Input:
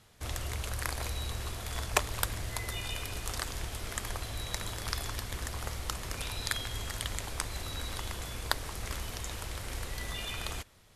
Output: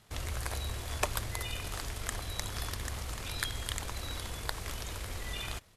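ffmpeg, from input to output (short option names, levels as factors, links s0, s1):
-af "atempo=1.9"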